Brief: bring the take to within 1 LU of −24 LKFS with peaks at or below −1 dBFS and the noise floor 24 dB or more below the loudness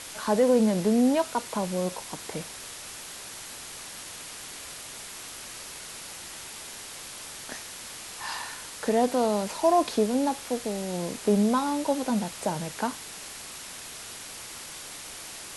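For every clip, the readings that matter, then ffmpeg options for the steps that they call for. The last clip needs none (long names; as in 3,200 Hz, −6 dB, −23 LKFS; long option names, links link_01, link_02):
background noise floor −42 dBFS; target noise floor −54 dBFS; integrated loudness −29.5 LKFS; sample peak −11.5 dBFS; target loudness −24.0 LKFS
→ -af "afftdn=noise_reduction=12:noise_floor=-42"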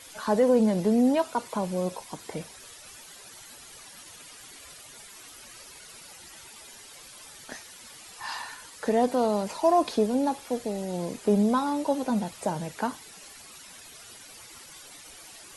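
background noise floor −48 dBFS; target noise floor −51 dBFS
→ -af "afftdn=noise_reduction=6:noise_floor=-48"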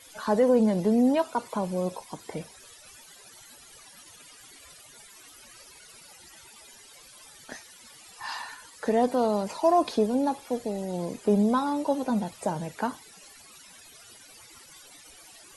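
background noise floor −52 dBFS; integrated loudness −26.5 LKFS; sample peak −11.5 dBFS; target loudness −24.0 LKFS
→ -af "volume=2.5dB"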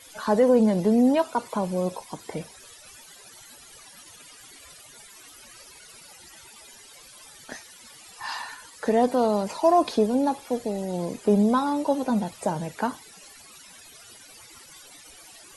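integrated loudness −24.0 LKFS; sample peak −9.0 dBFS; background noise floor −49 dBFS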